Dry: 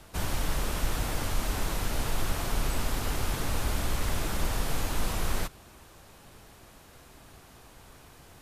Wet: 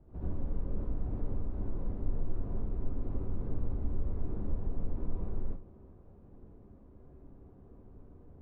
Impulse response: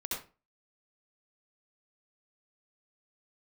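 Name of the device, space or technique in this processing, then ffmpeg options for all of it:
television next door: -filter_complex "[0:a]acompressor=threshold=-30dB:ratio=4,lowpass=390[a];[1:a]atrim=start_sample=2205[b];[a][b]afir=irnorm=-1:irlink=0,volume=-1.5dB"

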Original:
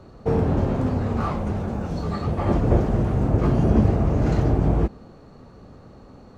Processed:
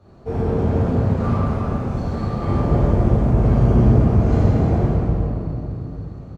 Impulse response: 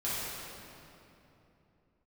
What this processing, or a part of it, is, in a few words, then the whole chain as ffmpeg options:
cave: -filter_complex "[0:a]aecho=1:1:289:0.335[a];[1:a]atrim=start_sample=2205[b];[a][b]afir=irnorm=-1:irlink=0,volume=-6.5dB"

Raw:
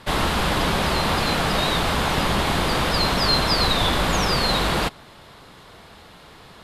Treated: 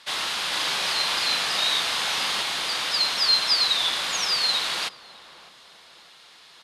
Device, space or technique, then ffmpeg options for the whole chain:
piezo pickup straight into a mixer: -filter_complex "[0:a]bandreject=f=7.6k:w=17,asplit=3[a][b][c];[a]afade=t=out:st=0.52:d=0.02[d];[b]asplit=2[e][f];[f]adelay=39,volume=-2.5dB[g];[e][g]amix=inputs=2:normalize=0,afade=t=in:st=0.52:d=0.02,afade=t=out:st=2.41:d=0.02[h];[c]afade=t=in:st=2.41:d=0.02[i];[d][h][i]amix=inputs=3:normalize=0,lowpass=5.8k,aderivative,asplit=2[j][k];[k]adelay=606,lowpass=f=1.1k:p=1,volume=-16dB,asplit=2[l][m];[m]adelay=606,lowpass=f=1.1k:p=1,volume=0.55,asplit=2[n][o];[o]adelay=606,lowpass=f=1.1k:p=1,volume=0.55,asplit=2[p][q];[q]adelay=606,lowpass=f=1.1k:p=1,volume=0.55,asplit=2[r][s];[s]adelay=606,lowpass=f=1.1k:p=1,volume=0.55[t];[j][l][n][p][r][t]amix=inputs=6:normalize=0,volume=7.5dB"

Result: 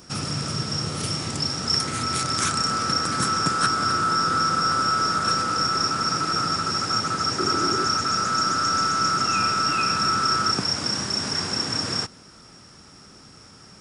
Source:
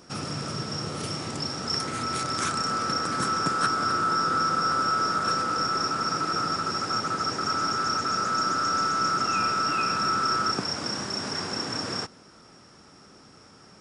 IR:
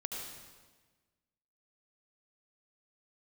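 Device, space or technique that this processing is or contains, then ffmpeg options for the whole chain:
smiley-face EQ: -filter_complex "[0:a]asettb=1/sr,asplit=3[a][b][c];[a]atrim=end=7.394[d];[b]atrim=start=7.39:end=7.87,asetpts=PTS-STARTPTS,afade=t=in:d=0.004:c=qsin,afade=t=out:st=0.476:d=0.004:c=qsin,equalizer=f=360:t=o:w=0.57:g=12.5[e];[c]atrim=start=7.866[f];[d][e]acrossfade=d=0.004:c1=hsin:c2=qsin[g];[g][f]acrossfade=d=0.004:c1=qsin:c2=hsin,lowshelf=f=160:g=4,equalizer=f=520:t=o:w=3:g=-5,highshelf=f=7.9k:g=5.5,volume=5dB"

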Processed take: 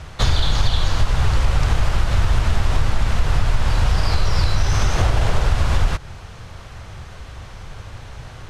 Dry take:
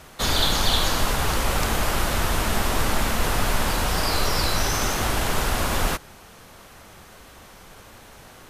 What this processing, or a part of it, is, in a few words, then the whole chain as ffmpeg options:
jukebox: -filter_complex "[0:a]lowpass=6k,lowshelf=f=160:t=q:w=1.5:g=10.5,acompressor=threshold=-18dB:ratio=4,asettb=1/sr,asplit=3[a][b][c];[a]atrim=end=4.954[d];[b]atrim=start=4.95:end=5.49,asetpts=PTS-STARTPTS,afade=t=in:d=0.004:c=qsin,afade=t=out:st=0.536:d=0.004:c=qsin,equalizer=f=540:t=o:w=1.1:g=5.5[e];[c]atrim=start=5.486[f];[d][e]acrossfade=d=0.004:c1=hsin:c2=qsin[g];[g][f]acrossfade=d=0.004:c1=qsin:c2=hsin,volume=5dB"

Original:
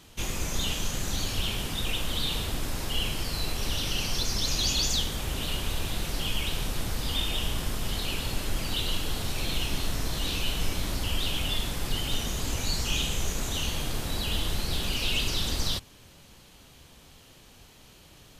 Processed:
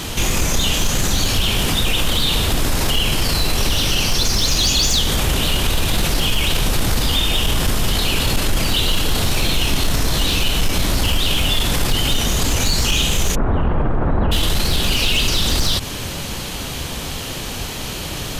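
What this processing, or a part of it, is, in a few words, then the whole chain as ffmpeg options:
loud club master: -filter_complex "[0:a]asplit=3[a][b][c];[a]afade=t=out:st=13.34:d=0.02[d];[b]lowpass=f=1.4k:w=0.5412,lowpass=f=1.4k:w=1.3066,afade=t=in:st=13.34:d=0.02,afade=t=out:st=14.31:d=0.02[e];[c]afade=t=in:st=14.31:d=0.02[f];[d][e][f]amix=inputs=3:normalize=0,acompressor=threshold=-29dB:ratio=2,asoftclip=type=hard:threshold=-24.5dB,alimiter=level_in=35.5dB:limit=-1dB:release=50:level=0:latency=1,volume=-9dB"

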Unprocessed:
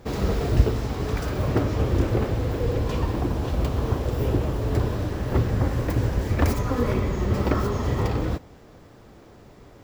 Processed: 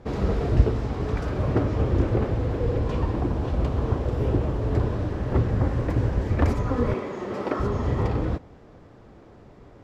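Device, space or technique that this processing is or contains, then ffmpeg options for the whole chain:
through cloth: -filter_complex "[0:a]lowpass=9.2k,highshelf=f=3.1k:g=-11,asettb=1/sr,asplit=3[a][b][c];[a]atrim=end=6.944[d];[b]atrim=start=6.94:end=7.6,asetpts=PTS-STARTPTS,afade=t=in:d=0.004:c=qsin,afade=t=out:st=0.656:d=0.004:c=qsin,highpass=310[e];[c]atrim=start=7.596[f];[d][e]acrossfade=d=0.004:c1=hsin:c2=qsin[g];[g][f]acrossfade=d=0.004:c1=qsin:c2=hsin"

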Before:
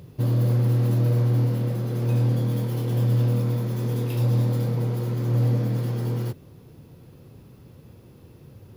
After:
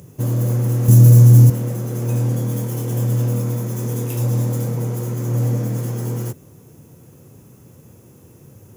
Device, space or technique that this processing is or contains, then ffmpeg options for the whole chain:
budget condenser microphone: -filter_complex "[0:a]asettb=1/sr,asplit=3[a][b][c];[a]atrim=end=0.884[d];[b]atrim=start=0.88:end=1.5,asetpts=PTS-STARTPTS,afade=t=in:d=0.004:c=qsin,afade=t=out:st=0.616:d=0.004:c=qsin,bass=f=250:g=12,treble=f=4k:g=11[e];[c]atrim=start=1.496[f];[d][e]acrossfade=d=0.004:c1=hsin:c2=qsin[g];[g][f]acrossfade=d=0.004:c1=qsin:c2=hsin,highpass=86,highshelf=f=5.4k:t=q:w=3:g=7.5,volume=3dB"

